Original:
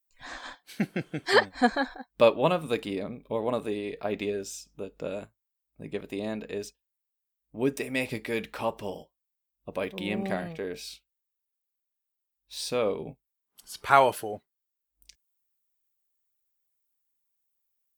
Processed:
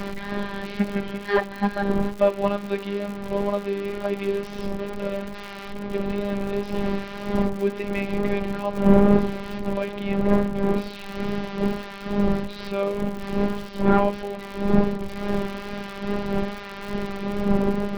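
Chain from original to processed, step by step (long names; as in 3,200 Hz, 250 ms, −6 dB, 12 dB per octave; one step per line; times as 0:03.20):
linear delta modulator 32 kbit/s, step −31.5 dBFS
wind on the microphone 350 Hz −27 dBFS
phases set to zero 200 Hz
in parallel at −2.5 dB: speech leveller within 5 dB 0.5 s
on the sum: high-frequency loss of the air 320 metres
surface crackle 96 per second −31 dBFS
tape wow and flutter 19 cents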